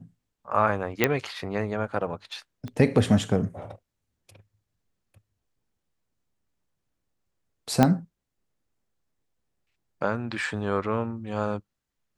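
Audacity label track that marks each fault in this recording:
1.040000	1.040000	click −5 dBFS
2.680000	2.680000	click −24 dBFS
7.830000	7.830000	click −5 dBFS

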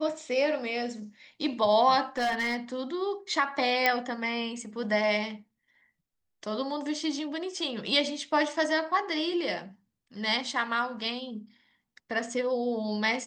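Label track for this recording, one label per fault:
2.170000	2.560000	clipping −24 dBFS
3.860000	3.860000	click −9 dBFS

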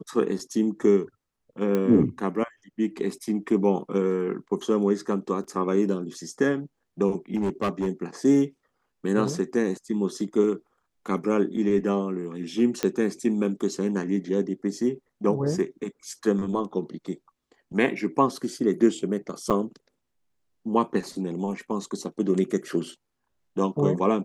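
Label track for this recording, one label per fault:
1.750000	1.750000	click −14 dBFS
5.440000	5.440000	drop-out 4.3 ms
7.350000	7.870000	clipping −21 dBFS
12.830000	12.830000	click −10 dBFS
19.500000	19.510000	drop-out 6.9 ms

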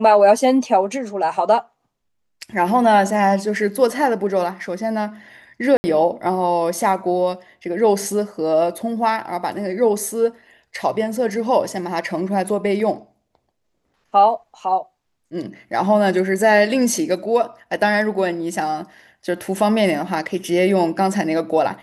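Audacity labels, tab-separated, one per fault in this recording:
5.770000	5.840000	drop-out 70 ms

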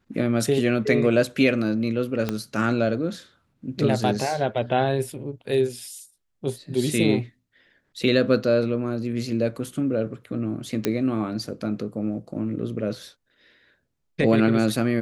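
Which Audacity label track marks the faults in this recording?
2.290000	2.290000	click −11 dBFS
10.850000	10.850000	click −8 dBFS

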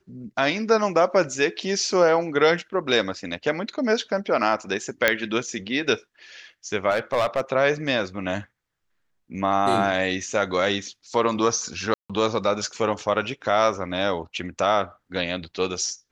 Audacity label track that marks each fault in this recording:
5.080000	5.080000	click −3 dBFS
6.900000	7.410000	clipping −16.5 dBFS
11.940000	12.100000	drop-out 156 ms

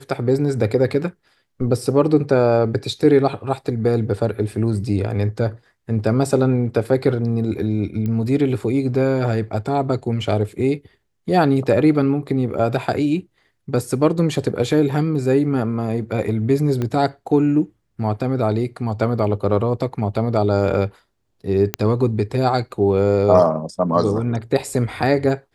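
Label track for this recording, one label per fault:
8.060000	8.060000	click −15 dBFS
16.820000	16.820000	click −12 dBFS
21.740000	21.740000	click −3 dBFS

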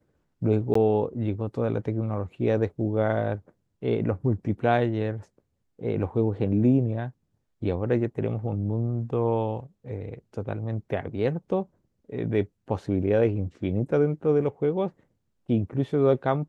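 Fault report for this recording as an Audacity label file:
0.740000	0.750000	drop-out 14 ms

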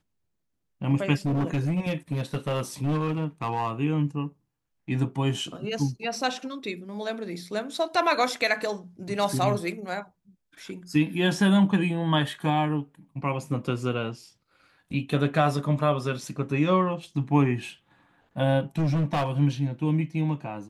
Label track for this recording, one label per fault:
1.250000	3.710000	clipping −22 dBFS
18.780000	19.300000	clipping −21 dBFS

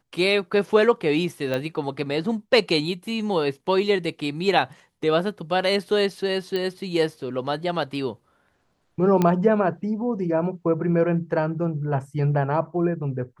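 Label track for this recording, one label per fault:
1.540000	1.540000	click −14 dBFS
6.560000	6.560000	click −15 dBFS
9.220000	9.220000	click −9 dBFS

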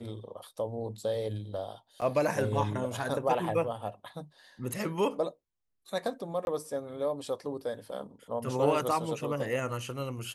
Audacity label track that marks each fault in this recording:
2.010000	2.020000	drop-out 7.5 ms
6.450000	6.470000	drop-out 21 ms

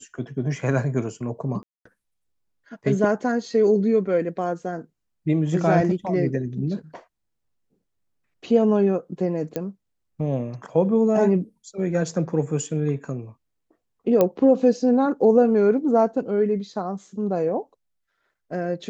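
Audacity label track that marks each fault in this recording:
1.630000	1.850000	drop-out 224 ms
9.560000	9.560000	click −14 dBFS
14.210000	14.210000	click −7 dBFS

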